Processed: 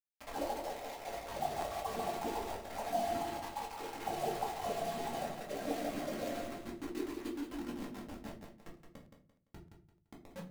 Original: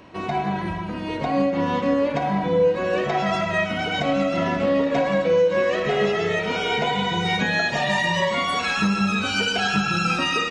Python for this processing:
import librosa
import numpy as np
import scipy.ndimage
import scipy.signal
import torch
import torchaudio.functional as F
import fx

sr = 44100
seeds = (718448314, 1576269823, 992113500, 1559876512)

p1 = fx.envelope_sharpen(x, sr, power=3.0)
p2 = fx.highpass(p1, sr, hz=110.0, slope=6)
p3 = fx.spec_gate(p2, sr, threshold_db=-30, keep='weak')
p4 = fx.peak_eq(p3, sr, hz=1200.0, db=-9.0, octaves=1.3)
p5 = fx.over_compress(p4, sr, threshold_db=-54.0, ratio=-0.5)
p6 = fx.filter_lfo_lowpass(p5, sr, shape='sine', hz=7.0, low_hz=310.0, high_hz=3000.0, q=6.6)
p7 = fx.comb_fb(p6, sr, f0_hz=230.0, decay_s=0.9, harmonics='all', damping=0.0, mix_pct=80)
p8 = fx.filter_sweep_lowpass(p7, sr, from_hz=790.0, to_hz=180.0, start_s=5.4, end_s=8.47, q=4.2)
p9 = fx.quant_dither(p8, sr, seeds[0], bits=10, dither='none')
p10 = p9 + fx.echo_feedback(p9, sr, ms=171, feedback_pct=29, wet_db=-7.5, dry=0)
p11 = fx.room_shoebox(p10, sr, seeds[1], volume_m3=190.0, walls='furnished', distance_m=2.2)
p12 = fx.buffer_crackle(p11, sr, first_s=0.36, period_s=0.31, block=512, kind='repeat')
y = F.gain(torch.from_numpy(p12), 12.5).numpy()